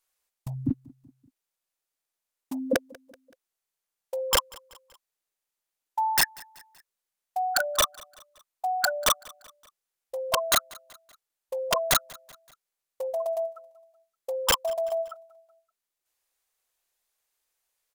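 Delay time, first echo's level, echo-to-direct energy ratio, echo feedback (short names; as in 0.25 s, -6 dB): 0.19 s, -23.5 dB, -22.5 dB, 51%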